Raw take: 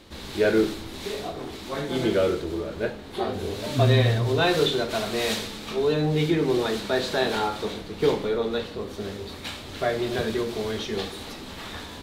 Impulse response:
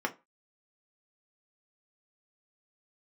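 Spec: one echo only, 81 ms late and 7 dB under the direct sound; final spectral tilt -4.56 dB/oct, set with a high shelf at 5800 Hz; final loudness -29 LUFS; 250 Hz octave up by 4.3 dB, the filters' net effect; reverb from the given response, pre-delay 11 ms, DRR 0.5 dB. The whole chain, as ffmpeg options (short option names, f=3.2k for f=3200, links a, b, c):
-filter_complex "[0:a]equalizer=f=250:t=o:g=6,highshelf=f=5.8k:g=8,aecho=1:1:81:0.447,asplit=2[a][b];[1:a]atrim=start_sample=2205,adelay=11[c];[b][c]afir=irnorm=-1:irlink=0,volume=-7.5dB[d];[a][d]amix=inputs=2:normalize=0,volume=-8.5dB"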